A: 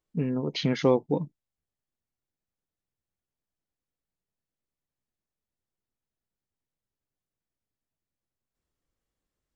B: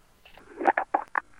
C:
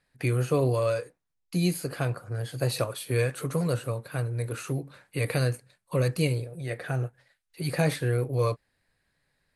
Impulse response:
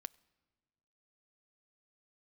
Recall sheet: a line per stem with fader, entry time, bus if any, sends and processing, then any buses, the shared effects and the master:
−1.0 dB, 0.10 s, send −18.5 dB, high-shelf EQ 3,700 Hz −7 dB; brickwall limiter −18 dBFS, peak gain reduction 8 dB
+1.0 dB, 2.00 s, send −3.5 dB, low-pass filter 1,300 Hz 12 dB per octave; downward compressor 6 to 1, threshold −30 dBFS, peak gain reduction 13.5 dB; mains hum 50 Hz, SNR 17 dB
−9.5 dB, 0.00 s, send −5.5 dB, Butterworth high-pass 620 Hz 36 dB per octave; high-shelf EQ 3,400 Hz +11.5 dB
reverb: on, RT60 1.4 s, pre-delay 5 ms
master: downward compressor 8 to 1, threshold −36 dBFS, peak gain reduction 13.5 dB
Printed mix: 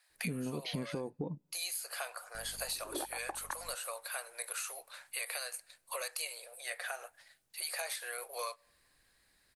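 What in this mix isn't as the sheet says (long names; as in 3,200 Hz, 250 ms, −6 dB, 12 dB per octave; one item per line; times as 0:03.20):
stem A −1.0 dB → +8.0 dB
stem B: entry 2.00 s → 2.35 s
stem C −9.5 dB → −2.5 dB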